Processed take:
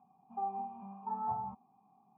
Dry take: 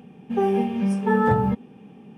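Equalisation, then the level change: cascade formant filter a; static phaser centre 1.9 kHz, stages 6; +1.0 dB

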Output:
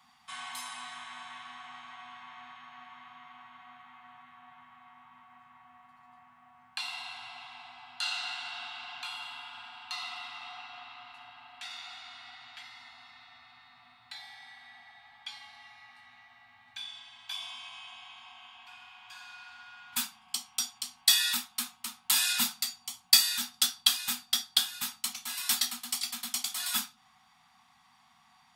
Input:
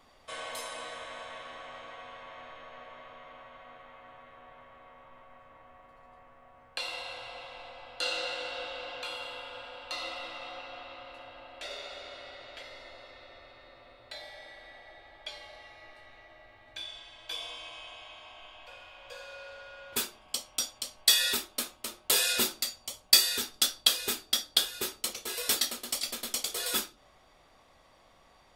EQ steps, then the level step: high-pass 150 Hz 12 dB/octave; Chebyshev band-stop 250–730 Hz, order 5; 0.0 dB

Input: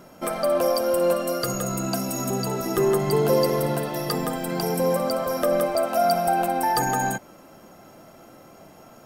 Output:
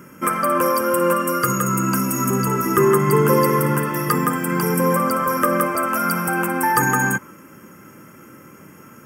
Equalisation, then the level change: high-pass 95 Hz; static phaser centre 1.7 kHz, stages 4; dynamic bell 1.1 kHz, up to +8 dB, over -49 dBFS, Q 1.9; +8.5 dB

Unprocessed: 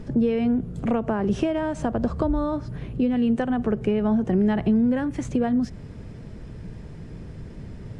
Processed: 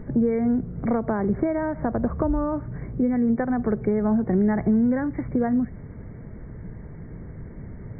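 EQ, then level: brick-wall FIR low-pass 2.3 kHz; 0.0 dB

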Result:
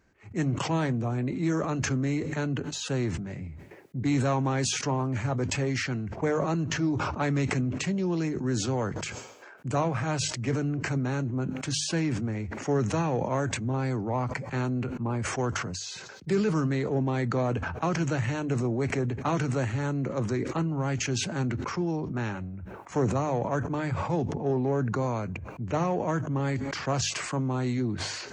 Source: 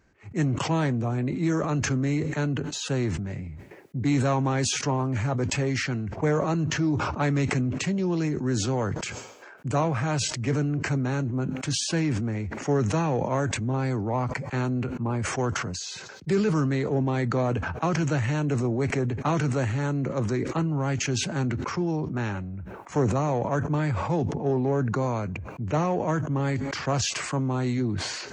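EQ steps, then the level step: hum notches 50/100/150 Hz; -2.0 dB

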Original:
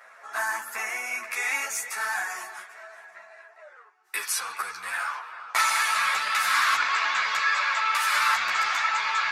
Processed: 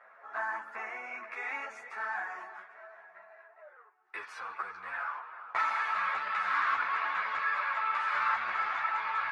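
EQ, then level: low-pass 1.6 kHz 12 dB/octave; -4.0 dB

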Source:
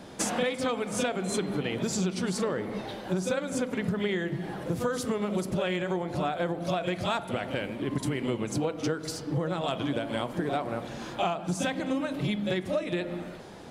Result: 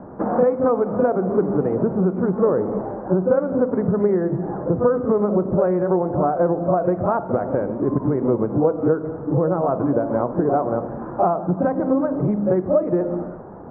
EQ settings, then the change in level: steep low-pass 1.3 kHz 36 dB/octave; dynamic bell 460 Hz, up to +5 dB, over -41 dBFS, Q 1.2; +8.0 dB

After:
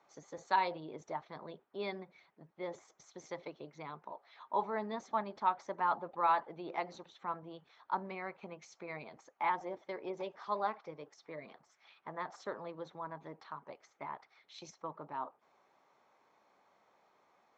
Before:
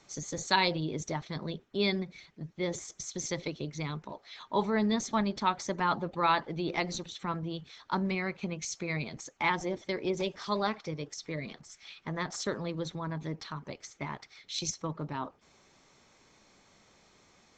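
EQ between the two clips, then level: band-pass filter 860 Hz, Q 1.4; -1.0 dB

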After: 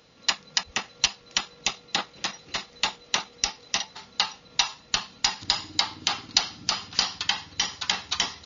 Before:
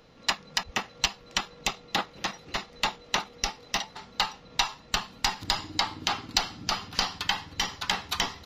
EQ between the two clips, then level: high-pass 48 Hz; brick-wall FIR low-pass 7.1 kHz; treble shelf 2.9 kHz +10.5 dB; -3.0 dB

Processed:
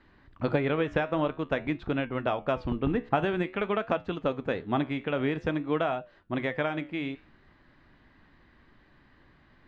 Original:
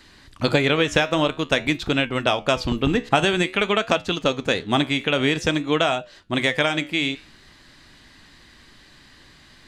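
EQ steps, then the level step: low-pass 1.6 kHz 12 dB/octave; -6.5 dB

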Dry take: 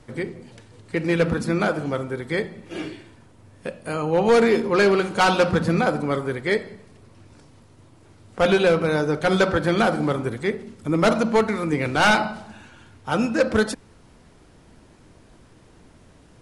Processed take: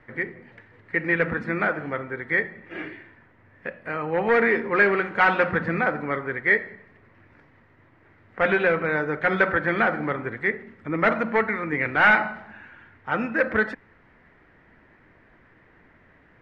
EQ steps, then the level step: resonant low-pass 1.9 kHz, resonance Q 4.9; bass shelf 190 Hz -5 dB; -4.5 dB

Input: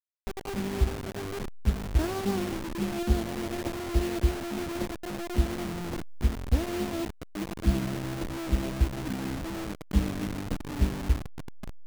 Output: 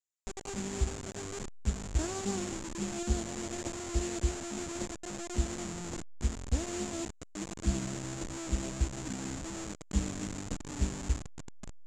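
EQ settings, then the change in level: resonant low-pass 7.2 kHz, resonance Q 8.3; -6.0 dB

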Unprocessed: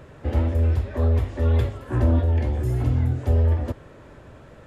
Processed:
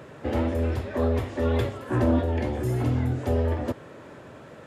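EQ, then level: high-pass 150 Hz 12 dB/octave; +3.0 dB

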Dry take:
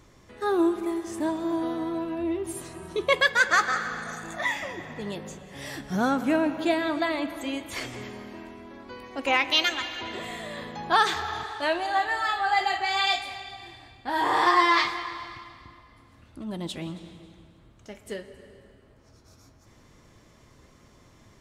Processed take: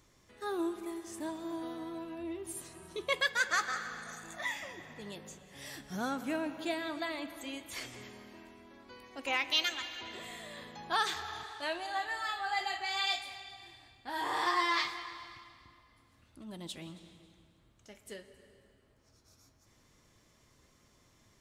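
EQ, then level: pre-emphasis filter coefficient 0.8; treble shelf 5.7 kHz -9 dB; +2.0 dB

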